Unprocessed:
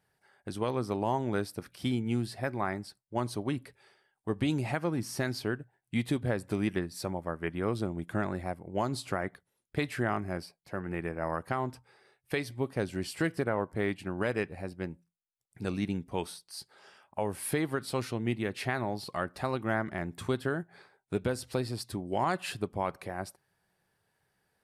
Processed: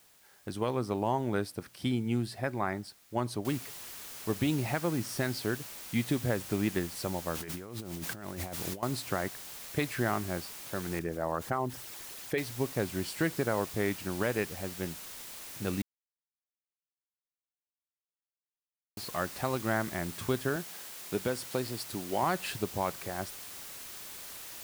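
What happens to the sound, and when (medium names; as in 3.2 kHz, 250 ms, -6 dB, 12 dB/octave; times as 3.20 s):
3.45 s: noise floor step -62 dB -45 dB
7.34–8.83 s: compressor with a negative ratio -40 dBFS
10.99–12.38 s: resonances exaggerated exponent 1.5
15.82–18.97 s: mute
20.56–22.23 s: high-pass 180 Hz 6 dB/octave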